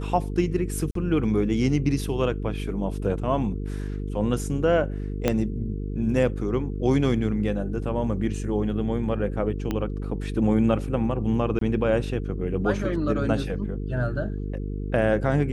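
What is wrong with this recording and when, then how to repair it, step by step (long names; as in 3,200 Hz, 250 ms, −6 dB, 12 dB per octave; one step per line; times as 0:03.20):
mains buzz 50 Hz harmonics 9 −30 dBFS
0:00.91–0:00.95: drop-out 43 ms
0:05.28: click −8 dBFS
0:09.71: click −14 dBFS
0:11.59–0:11.61: drop-out 23 ms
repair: click removal
hum removal 50 Hz, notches 9
repair the gap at 0:00.91, 43 ms
repair the gap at 0:11.59, 23 ms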